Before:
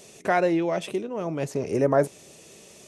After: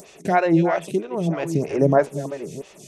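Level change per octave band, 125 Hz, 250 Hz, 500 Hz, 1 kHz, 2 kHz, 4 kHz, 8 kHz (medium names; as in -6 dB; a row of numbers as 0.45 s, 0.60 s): +8.5 dB, +6.0 dB, +3.0 dB, +4.5 dB, +2.5 dB, -0.5 dB, +1.0 dB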